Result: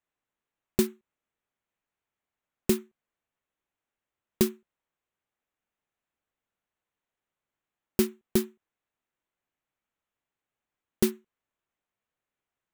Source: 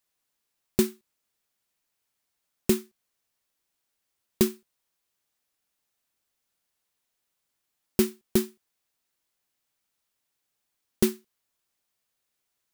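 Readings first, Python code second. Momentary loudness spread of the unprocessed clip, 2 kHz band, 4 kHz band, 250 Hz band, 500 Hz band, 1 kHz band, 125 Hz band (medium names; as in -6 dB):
4 LU, -1.5 dB, -2.0 dB, -1.5 dB, -1.5 dB, -1.5 dB, -1.5 dB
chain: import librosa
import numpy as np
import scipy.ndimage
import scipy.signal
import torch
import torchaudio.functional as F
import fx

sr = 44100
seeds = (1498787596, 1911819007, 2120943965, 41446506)

y = fx.wiener(x, sr, points=9)
y = F.gain(torch.from_numpy(y), -1.5).numpy()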